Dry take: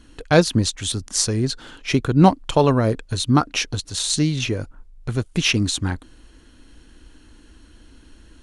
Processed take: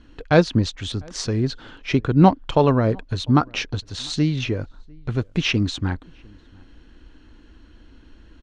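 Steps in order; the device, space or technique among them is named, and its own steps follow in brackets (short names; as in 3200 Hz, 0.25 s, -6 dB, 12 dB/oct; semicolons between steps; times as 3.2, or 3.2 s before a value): shout across a valley (air absorption 160 m; outdoor echo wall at 120 m, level -28 dB)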